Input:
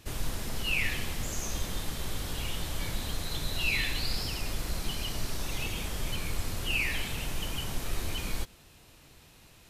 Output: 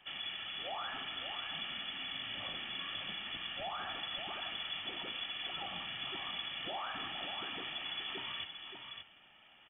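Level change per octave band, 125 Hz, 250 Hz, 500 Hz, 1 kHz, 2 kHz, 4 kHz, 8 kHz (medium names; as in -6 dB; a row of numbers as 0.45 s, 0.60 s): -22.5 dB, -12.5 dB, -7.0 dB, 0.0 dB, -7.0 dB, -1.5 dB, under -40 dB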